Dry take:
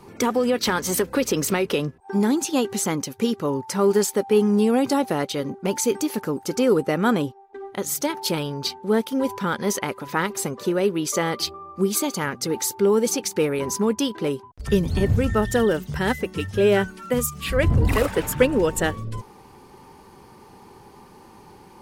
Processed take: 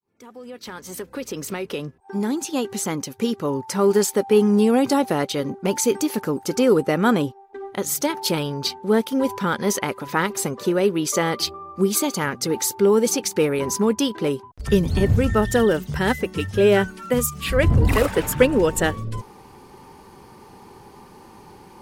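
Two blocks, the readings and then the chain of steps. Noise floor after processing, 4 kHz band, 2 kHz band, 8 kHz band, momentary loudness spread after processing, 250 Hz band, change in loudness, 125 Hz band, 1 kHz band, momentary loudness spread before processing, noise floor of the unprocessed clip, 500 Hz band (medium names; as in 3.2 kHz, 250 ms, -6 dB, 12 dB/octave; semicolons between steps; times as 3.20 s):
-47 dBFS, +1.0 dB, +1.5 dB, +1.0 dB, 12 LU, +1.0 dB, +1.5 dB, +1.5 dB, +1.0 dB, 7 LU, -48 dBFS, +1.5 dB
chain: fade-in on the opening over 4.27 s; trim +2 dB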